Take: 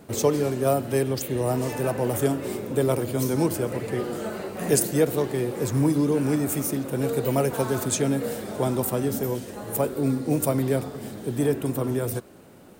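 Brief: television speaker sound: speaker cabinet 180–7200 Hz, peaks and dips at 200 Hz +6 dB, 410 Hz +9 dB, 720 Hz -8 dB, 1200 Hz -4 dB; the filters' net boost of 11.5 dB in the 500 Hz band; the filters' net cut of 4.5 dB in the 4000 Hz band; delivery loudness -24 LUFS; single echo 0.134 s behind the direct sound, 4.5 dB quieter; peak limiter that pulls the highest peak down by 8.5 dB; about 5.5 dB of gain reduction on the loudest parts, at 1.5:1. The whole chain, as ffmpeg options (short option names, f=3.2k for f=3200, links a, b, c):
-af "equalizer=f=500:t=o:g=7.5,equalizer=f=4k:t=o:g=-6,acompressor=threshold=-25dB:ratio=1.5,alimiter=limit=-16.5dB:level=0:latency=1,highpass=f=180:w=0.5412,highpass=f=180:w=1.3066,equalizer=f=200:t=q:w=4:g=6,equalizer=f=410:t=q:w=4:g=9,equalizer=f=720:t=q:w=4:g=-8,equalizer=f=1.2k:t=q:w=4:g=-4,lowpass=f=7.2k:w=0.5412,lowpass=f=7.2k:w=1.3066,aecho=1:1:134:0.596,volume=-2.5dB"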